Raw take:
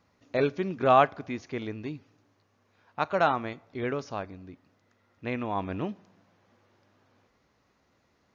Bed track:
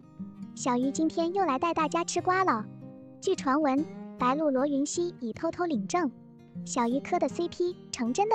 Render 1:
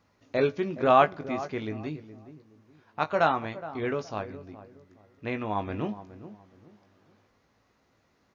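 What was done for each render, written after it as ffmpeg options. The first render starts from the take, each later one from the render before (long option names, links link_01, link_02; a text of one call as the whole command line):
ffmpeg -i in.wav -filter_complex "[0:a]asplit=2[link_01][link_02];[link_02]adelay=19,volume=-8.5dB[link_03];[link_01][link_03]amix=inputs=2:normalize=0,asplit=2[link_04][link_05];[link_05]adelay=418,lowpass=frequency=860:poles=1,volume=-13dB,asplit=2[link_06][link_07];[link_07]adelay=418,lowpass=frequency=860:poles=1,volume=0.32,asplit=2[link_08][link_09];[link_09]adelay=418,lowpass=frequency=860:poles=1,volume=0.32[link_10];[link_04][link_06][link_08][link_10]amix=inputs=4:normalize=0" out.wav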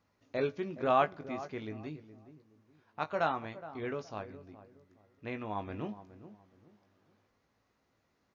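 ffmpeg -i in.wav -af "volume=-7.5dB" out.wav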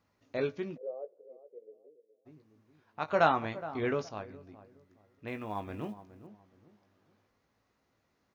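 ffmpeg -i in.wav -filter_complex "[0:a]asplit=3[link_01][link_02][link_03];[link_01]afade=type=out:start_time=0.76:duration=0.02[link_04];[link_02]asuperpass=centerf=490:order=4:qfactor=5,afade=type=in:start_time=0.76:duration=0.02,afade=type=out:start_time=2.25:duration=0.02[link_05];[link_03]afade=type=in:start_time=2.25:duration=0.02[link_06];[link_04][link_05][link_06]amix=inputs=3:normalize=0,asettb=1/sr,asplit=3[link_07][link_08][link_09];[link_07]atrim=end=3.084[link_10];[link_08]atrim=start=3.08:end=4.09,asetpts=PTS-STARTPTS,afade=type=in:duration=0.004:curve=qsin,afade=type=out:start_time=1.006:duration=0.004:curve=qsin,acontrast=54[link_11];[link_09]atrim=start=4.086[link_12];[link_10][link_11]acrossfade=duration=0.004:curve1=hsin:curve2=qsin[link_13];[link_13][link_12]acrossfade=duration=0.004:curve1=qsin:curve2=hsin,asettb=1/sr,asplit=3[link_14][link_15][link_16];[link_14]atrim=end=5.274[link_17];[link_15]atrim=start=5.27:end=6.27,asetpts=PTS-STARTPTS,afade=type=in:duration=0.004:curve=qsin,afade=type=out:start_time=0.996:duration=0.004:curve=qsin,acrusher=bits=8:mode=log:mix=0:aa=0.000001[link_18];[link_16]atrim=start=6.266[link_19];[link_17][link_18]acrossfade=duration=0.004:curve1=hsin:curve2=qsin[link_20];[link_20][link_19]acrossfade=duration=0.004:curve1=qsin:curve2=hsin" out.wav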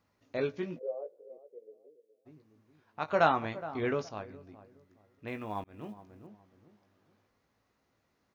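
ffmpeg -i in.wav -filter_complex "[0:a]asettb=1/sr,asplit=3[link_01][link_02][link_03];[link_01]atrim=end=0.524[link_04];[link_02]atrim=start=0.52:end=1.38,asetpts=PTS-STARTPTS,afade=type=in:duration=0.004:curve=qsin,afade=type=out:start_time=0.856:duration=0.004:curve=qsin,asplit=2[link_05][link_06];[link_06]adelay=17,volume=-4dB[link_07];[link_05][link_07]amix=inputs=2:normalize=0,atrim=end_sample=37926[link_08];[link_03]atrim=start=1.376[link_09];[link_04][link_08]acrossfade=duration=0.004:curve1=hsin:curve2=qsin[link_10];[link_10][link_09]acrossfade=duration=0.004:curve1=qsin:curve2=hsin,asplit=2[link_11][link_12];[link_11]atrim=end=5.64,asetpts=PTS-STARTPTS,afade=type=out:start_time=5.636:duration=0.004:curve=hsin[link_13];[link_12]atrim=start=5.64,asetpts=PTS-STARTPTS,afade=type=in:duration=0.53:curve=qsin[link_14];[link_13][link_14]concat=n=2:v=0:a=1" out.wav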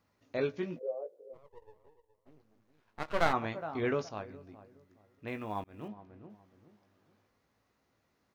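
ffmpeg -i in.wav -filter_complex "[0:a]asplit=3[link_01][link_02][link_03];[link_01]afade=type=out:start_time=1.33:duration=0.02[link_04];[link_02]aeval=exprs='max(val(0),0)':channel_layout=same,afade=type=in:start_time=1.33:duration=0.02,afade=type=out:start_time=3.32:duration=0.02[link_05];[link_03]afade=type=in:start_time=3.32:duration=0.02[link_06];[link_04][link_05][link_06]amix=inputs=3:normalize=0,asettb=1/sr,asplit=3[link_07][link_08][link_09];[link_07]atrim=end=5.884[link_10];[link_08]atrim=start=5.88:end=6.3,asetpts=PTS-STARTPTS,afade=type=in:duration=0.004:curve=qsin,afade=type=out:start_time=0.416:duration=0.004:curve=qsin,lowpass=3500[link_11];[link_09]atrim=start=6.296[link_12];[link_10][link_11]acrossfade=duration=0.004:curve1=hsin:curve2=qsin[link_13];[link_13][link_12]acrossfade=duration=0.004:curve1=qsin:curve2=hsin" out.wav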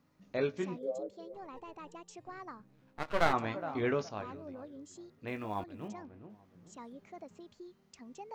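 ffmpeg -i in.wav -i bed.wav -filter_complex "[1:a]volume=-21.5dB[link_01];[0:a][link_01]amix=inputs=2:normalize=0" out.wav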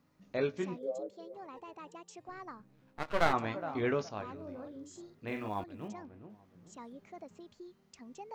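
ffmpeg -i in.wav -filter_complex "[0:a]asettb=1/sr,asplit=3[link_01][link_02][link_03];[link_01]atrim=end=0.744[link_04];[link_02]atrim=start=0.74:end=2.29,asetpts=PTS-STARTPTS,afade=type=in:duration=0.004:curve=qsin,afade=type=out:start_time=1.546:duration=0.004:curve=qsin,highpass=frequency=160:poles=1[link_05];[link_03]atrim=start=2.286[link_06];[link_04][link_05]acrossfade=duration=0.004:curve1=hsin:curve2=qsin[link_07];[link_07][link_06]acrossfade=duration=0.004:curve1=qsin:curve2=hsin,asettb=1/sr,asplit=3[link_08][link_09][link_10];[link_08]atrim=end=4.354[link_11];[link_09]atrim=start=4.35:end=5.49,asetpts=PTS-STARTPTS,afade=type=in:duration=0.004:curve=qsin,afade=type=out:start_time=1.136:duration=0.004:curve=qsin,asplit=2[link_12][link_13];[link_13]adelay=44,volume=-5.5dB[link_14];[link_12][link_14]amix=inputs=2:normalize=0,atrim=end_sample=50274[link_15];[link_10]atrim=start=5.486[link_16];[link_11][link_15]acrossfade=duration=0.004:curve1=hsin:curve2=qsin[link_17];[link_17][link_16]acrossfade=duration=0.004:curve1=qsin:curve2=hsin" out.wav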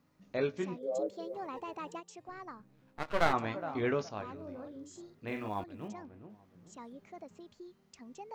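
ffmpeg -i in.wav -filter_complex "[0:a]asplit=3[link_01][link_02][link_03];[link_01]afade=type=out:start_time=0.91:duration=0.02[link_04];[link_02]acontrast=69,afade=type=in:start_time=0.91:duration=0.02,afade=type=out:start_time=1.99:duration=0.02[link_05];[link_03]afade=type=in:start_time=1.99:duration=0.02[link_06];[link_04][link_05][link_06]amix=inputs=3:normalize=0" out.wav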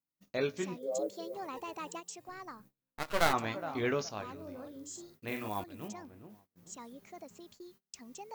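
ffmpeg -i in.wav -af "aemphasis=mode=production:type=75fm,agate=range=-29dB:threshold=-58dB:ratio=16:detection=peak" out.wav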